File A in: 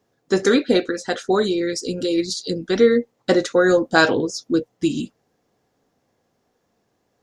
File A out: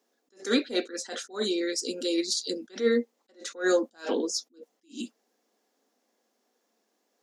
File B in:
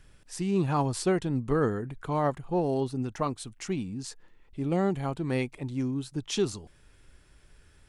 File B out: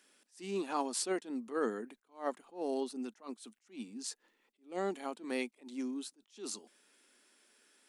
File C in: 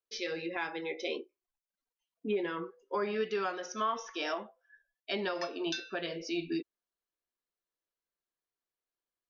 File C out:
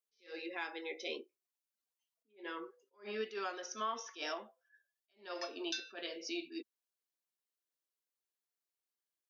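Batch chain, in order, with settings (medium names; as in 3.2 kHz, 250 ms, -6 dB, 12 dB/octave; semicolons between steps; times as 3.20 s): elliptic high-pass 220 Hz, stop band 40 dB; treble shelf 2.8 kHz +9 dB; saturation -1 dBFS; attacks held to a fixed rise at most 210 dB/s; trim -6.5 dB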